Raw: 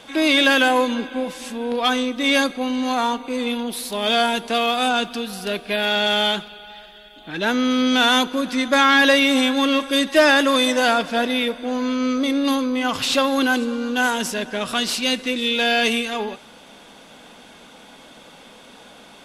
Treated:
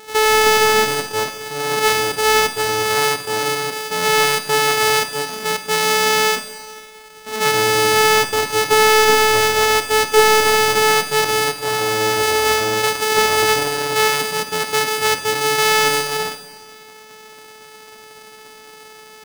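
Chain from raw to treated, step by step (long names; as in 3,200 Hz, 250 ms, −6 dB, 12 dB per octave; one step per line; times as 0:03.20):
samples sorted by size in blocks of 128 samples
low-shelf EQ 170 Hz −11 dB
gain into a clipping stage and back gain 11 dB
pitch shifter +4 semitones
four-comb reverb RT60 1.5 s, combs from 31 ms, DRR 9.5 dB
level +5.5 dB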